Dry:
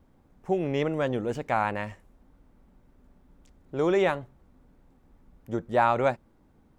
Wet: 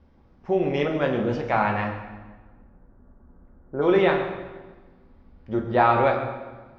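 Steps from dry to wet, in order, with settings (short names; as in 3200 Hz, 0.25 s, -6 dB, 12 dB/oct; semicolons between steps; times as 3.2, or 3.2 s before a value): Chebyshev low-pass 5400 Hz, order 4, from 1.87 s 1600 Hz, from 3.81 s 4800 Hz; reverb RT60 1.3 s, pre-delay 7 ms, DRR 1 dB; gain +2.5 dB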